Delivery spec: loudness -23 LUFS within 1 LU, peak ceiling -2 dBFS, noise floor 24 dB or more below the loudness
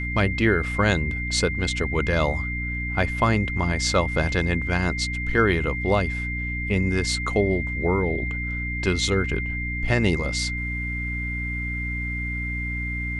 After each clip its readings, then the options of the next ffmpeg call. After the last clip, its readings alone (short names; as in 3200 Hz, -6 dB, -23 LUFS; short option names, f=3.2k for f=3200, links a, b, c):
hum 60 Hz; harmonics up to 300 Hz; hum level -28 dBFS; steady tone 2100 Hz; tone level -29 dBFS; loudness -24.0 LUFS; peak -5.0 dBFS; loudness target -23.0 LUFS
-> -af "bandreject=f=60:t=h:w=6,bandreject=f=120:t=h:w=6,bandreject=f=180:t=h:w=6,bandreject=f=240:t=h:w=6,bandreject=f=300:t=h:w=6"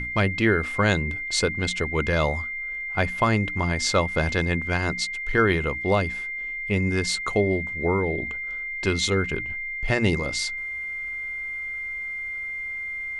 hum none; steady tone 2100 Hz; tone level -29 dBFS
-> -af "bandreject=f=2.1k:w=30"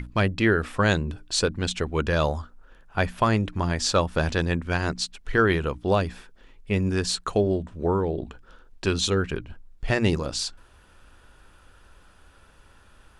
steady tone none; loudness -25.5 LUFS; peak -6.0 dBFS; loudness target -23.0 LUFS
-> -af "volume=2.5dB"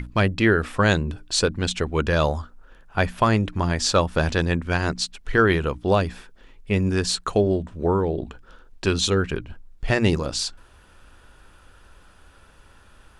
loudness -23.0 LUFS; peak -3.5 dBFS; noise floor -52 dBFS